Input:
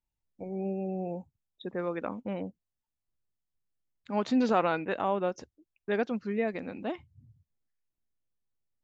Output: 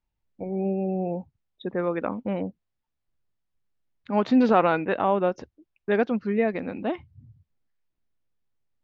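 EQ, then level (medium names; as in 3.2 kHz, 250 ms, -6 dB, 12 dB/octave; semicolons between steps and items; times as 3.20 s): distance through air 180 m; +7.0 dB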